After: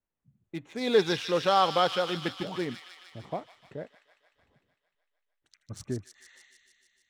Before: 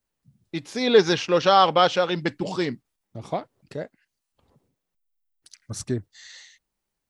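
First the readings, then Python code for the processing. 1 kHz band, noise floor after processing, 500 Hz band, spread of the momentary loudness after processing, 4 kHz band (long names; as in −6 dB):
−6.5 dB, −84 dBFS, −6.5 dB, 21 LU, −5.5 dB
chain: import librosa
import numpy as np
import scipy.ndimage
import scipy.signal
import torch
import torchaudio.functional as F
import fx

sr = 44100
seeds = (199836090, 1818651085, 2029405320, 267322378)

y = fx.wiener(x, sr, points=9)
y = fx.echo_wet_highpass(y, sr, ms=151, feedback_pct=70, hz=2300.0, wet_db=-4)
y = y * librosa.db_to_amplitude(-6.5)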